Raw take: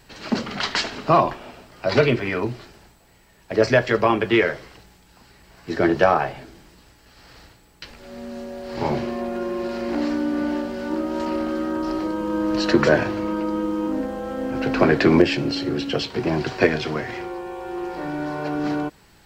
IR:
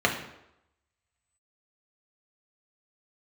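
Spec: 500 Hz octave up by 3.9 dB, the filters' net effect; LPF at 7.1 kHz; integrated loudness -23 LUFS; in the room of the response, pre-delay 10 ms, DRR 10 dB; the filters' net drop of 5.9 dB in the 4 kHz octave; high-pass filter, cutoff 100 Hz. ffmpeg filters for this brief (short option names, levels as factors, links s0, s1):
-filter_complex "[0:a]highpass=100,lowpass=7100,equalizer=f=500:t=o:g=5,equalizer=f=4000:t=o:g=-7.5,asplit=2[s0][s1];[1:a]atrim=start_sample=2205,adelay=10[s2];[s1][s2]afir=irnorm=-1:irlink=0,volume=0.0562[s3];[s0][s3]amix=inputs=2:normalize=0,volume=0.708"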